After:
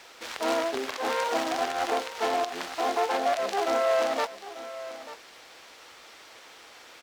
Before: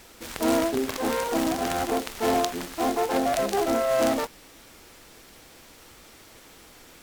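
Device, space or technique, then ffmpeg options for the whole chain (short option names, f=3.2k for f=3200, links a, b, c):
DJ mixer with the lows and highs turned down: -filter_complex "[0:a]acrossover=split=450 6200:gain=0.178 1 0.2[a][b][c];[a][b][c]amix=inputs=3:normalize=0,alimiter=limit=-19.5dB:level=0:latency=1:release=149,highpass=49,lowshelf=f=200:g=-4.5,aecho=1:1:891:0.188,volume=3.5dB"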